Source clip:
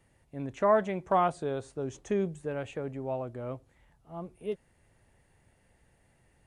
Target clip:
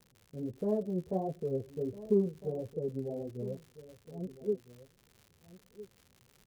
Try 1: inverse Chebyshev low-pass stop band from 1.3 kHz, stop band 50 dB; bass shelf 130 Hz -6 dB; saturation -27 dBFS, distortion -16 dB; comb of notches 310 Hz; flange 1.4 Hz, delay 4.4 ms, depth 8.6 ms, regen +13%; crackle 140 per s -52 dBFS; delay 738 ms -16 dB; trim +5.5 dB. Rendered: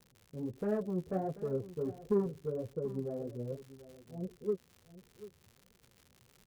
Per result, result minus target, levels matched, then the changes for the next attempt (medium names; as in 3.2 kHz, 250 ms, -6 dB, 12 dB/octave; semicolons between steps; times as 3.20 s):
saturation: distortion +19 dB; echo 568 ms early
change: saturation -15.5 dBFS, distortion -35 dB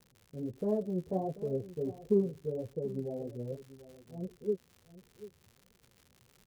echo 568 ms early
change: delay 1306 ms -16 dB